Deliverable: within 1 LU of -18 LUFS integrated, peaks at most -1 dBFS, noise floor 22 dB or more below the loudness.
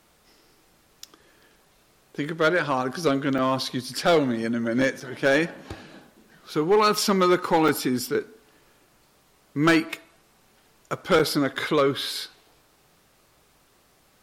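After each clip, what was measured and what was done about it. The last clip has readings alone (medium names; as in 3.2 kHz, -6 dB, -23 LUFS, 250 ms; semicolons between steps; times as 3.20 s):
clipped samples 0.6%; clipping level -13.0 dBFS; dropouts 4; longest dropout 5.4 ms; loudness -23.5 LUFS; peak level -13.0 dBFS; loudness target -18.0 LUFS
-> clip repair -13 dBFS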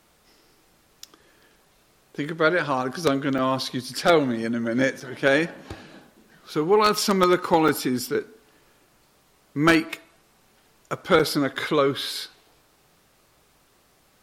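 clipped samples 0.0%; dropouts 4; longest dropout 5.4 ms
-> interpolate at 3.38/5.00/7.68/11.19 s, 5.4 ms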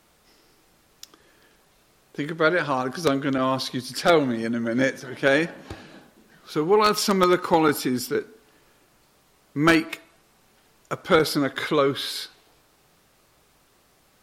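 dropouts 0; loudness -22.5 LUFS; peak level -4.0 dBFS; loudness target -18.0 LUFS
-> trim +4.5 dB; peak limiter -1 dBFS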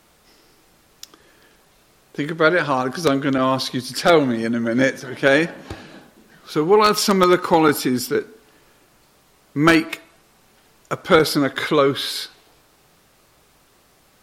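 loudness -18.5 LUFS; peak level -1.0 dBFS; noise floor -57 dBFS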